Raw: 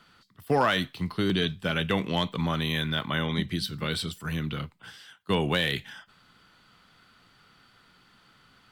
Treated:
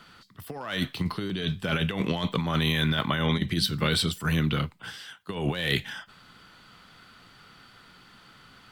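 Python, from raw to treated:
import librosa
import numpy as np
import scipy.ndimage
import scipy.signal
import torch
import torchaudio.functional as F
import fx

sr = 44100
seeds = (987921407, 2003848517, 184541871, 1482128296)

y = fx.over_compress(x, sr, threshold_db=-29.0, ratio=-0.5)
y = F.gain(torch.from_numpy(y), 3.5).numpy()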